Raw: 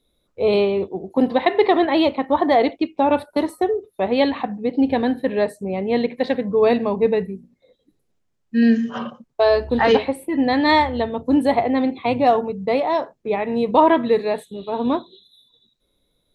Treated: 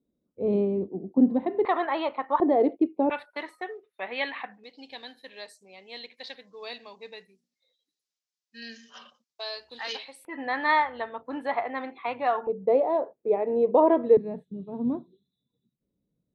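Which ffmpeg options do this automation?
-af "asetnsamples=n=441:p=0,asendcmd='1.65 bandpass f 1200;2.4 bandpass f 370;3.1 bandpass f 2000;4.64 bandpass f 5200;10.25 bandpass f 1400;12.47 bandpass f 480;14.17 bandpass f 170',bandpass=f=230:t=q:w=1.9:csg=0"

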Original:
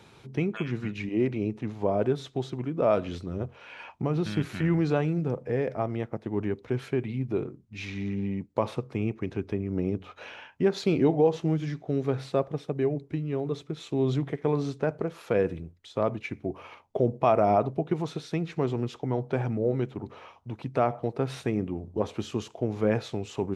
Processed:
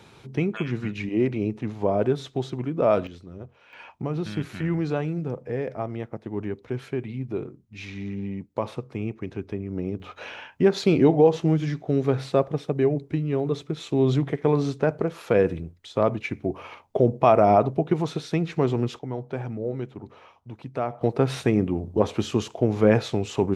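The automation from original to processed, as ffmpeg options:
-af "asetnsamples=n=441:p=0,asendcmd='3.07 volume volume -7.5dB;3.73 volume volume -1dB;10 volume volume 5dB;18.99 volume volume -3dB;21.01 volume volume 7dB',volume=3dB"

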